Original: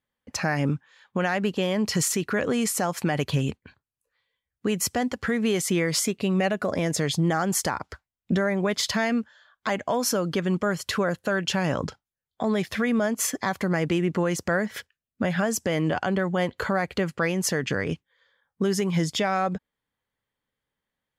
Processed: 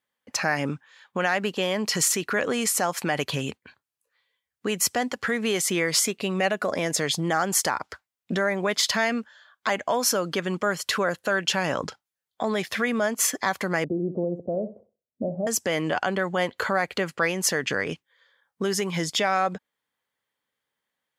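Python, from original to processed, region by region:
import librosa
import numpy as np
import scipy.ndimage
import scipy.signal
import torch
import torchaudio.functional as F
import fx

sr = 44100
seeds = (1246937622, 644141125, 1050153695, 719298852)

y = fx.chain(x, sr, fx.ellip_lowpass(hz=640.0, order=4, stop_db=60),
    fx.room_flutter(wall_m=10.8, rt60_s=0.32), at=(13.84, 15.47))
y = fx.highpass(y, sr, hz=190.0, slope=6)
y = fx.low_shelf(y, sr, hz=410.0, db=-7.0)
y = F.gain(torch.from_numpy(y), 3.5).numpy()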